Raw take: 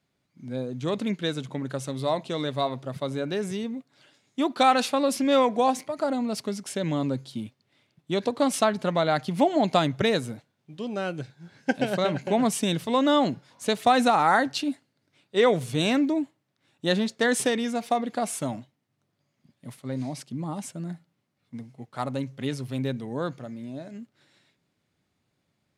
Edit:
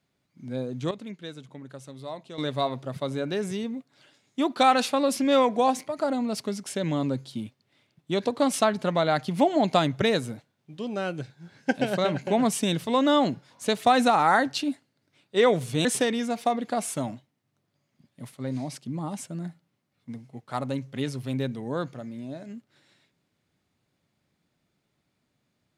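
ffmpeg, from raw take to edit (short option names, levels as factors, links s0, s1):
-filter_complex "[0:a]asplit=4[s0][s1][s2][s3];[s0]atrim=end=0.912[s4];[s1]atrim=start=0.908:end=2.382,asetpts=PTS-STARTPTS,volume=0.282[s5];[s2]atrim=start=2.378:end=15.852[s6];[s3]atrim=start=17.298[s7];[s4][s5]acrossfade=d=0.004:c1=hsin:c2=hsin[s8];[s8][s6]acrossfade=d=0.004:c1=hsin:c2=hsin[s9];[s9][s7]acrossfade=d=0.004:c1=hsin:c2=hsin"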